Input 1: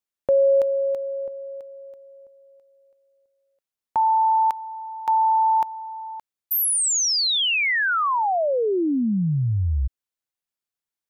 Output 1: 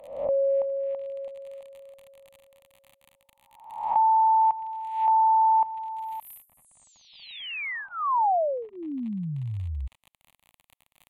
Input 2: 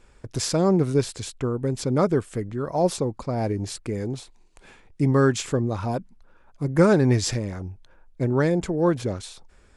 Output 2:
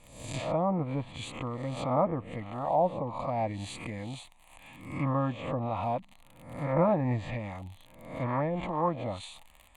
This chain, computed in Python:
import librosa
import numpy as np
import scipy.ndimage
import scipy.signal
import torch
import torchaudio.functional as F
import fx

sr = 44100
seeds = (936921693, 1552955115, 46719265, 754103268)

y = fx.spec_swells(x, sr, rise_s=0.67)
y = fx.bass_treble(y, sr, bass_db=-9, treble_db=0)
y = fx.dmg_crackle(y, sr, seeds[0], per_s=48.0, level_db=-33.0)
y = fx.env_lowpass_down(y, sr, base_hz=1200.0, full_db=-19.0)
y = fx.fixed_phaser(y, sr, hz=1500.0, stages=6)